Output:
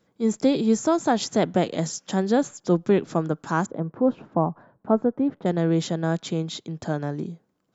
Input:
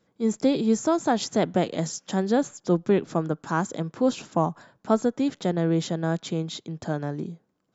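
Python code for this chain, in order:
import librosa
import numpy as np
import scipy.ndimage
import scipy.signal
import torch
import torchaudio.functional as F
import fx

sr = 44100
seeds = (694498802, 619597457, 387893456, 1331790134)

y = fx.lowpass(x, sr, hz=1100.0, slope=12, at=(3.66, 5.46))
y = F.gain(torch.from_numpy(y), 1.5).numpy()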